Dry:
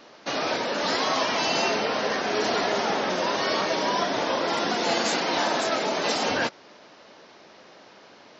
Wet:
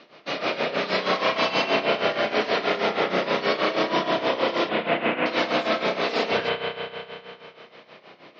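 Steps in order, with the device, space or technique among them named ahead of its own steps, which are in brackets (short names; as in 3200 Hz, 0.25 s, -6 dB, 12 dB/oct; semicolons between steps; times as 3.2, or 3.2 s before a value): 4.69–5.26 steep low-pass 3000 Hz 72 dB/oct; combo amplifier with spring reverb and tremolo (spring tank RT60 2.8 s, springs 32 ms, chirp 40 ms, DRR -1.5 dB; tremolo 6.3 Hz, depth 76%; speaker cabinet 110–4500 Hz, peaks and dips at 270 Hz -4 dB, 870 Hz -7 dB, 1600 Hz -4 dB, 2300 Hz +3 dB); gain +2.5 dB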